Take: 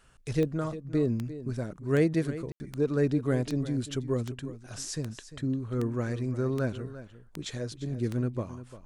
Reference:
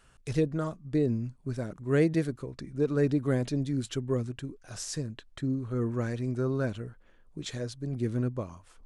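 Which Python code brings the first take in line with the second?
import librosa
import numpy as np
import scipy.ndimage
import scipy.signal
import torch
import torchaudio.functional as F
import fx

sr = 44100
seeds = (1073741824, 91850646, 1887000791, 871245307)

y = fx.fix_declick_ar(x, sr, threshold=10.0)
y = fx.fix_ambience(y, sr, seeds[0], print_start_s=6.87, print_end_s=7.37, start_s=2.52, end_s=2.6)
y = fx.fix_echo_inverse(y, sr, delay_ms=348, level_db=-14.0)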